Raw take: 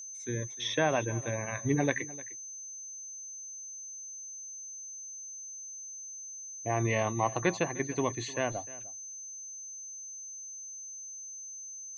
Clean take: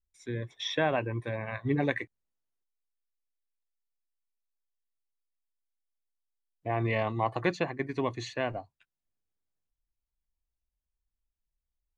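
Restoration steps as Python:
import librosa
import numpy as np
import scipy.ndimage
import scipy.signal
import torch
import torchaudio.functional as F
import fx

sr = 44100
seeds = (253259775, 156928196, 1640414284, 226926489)

y = fx.notch(x, sr, hz=6200.0, q=30.0)
y = fx.fix_echo_inverse(y, sr, delay_ms=303, level_db=-19.0)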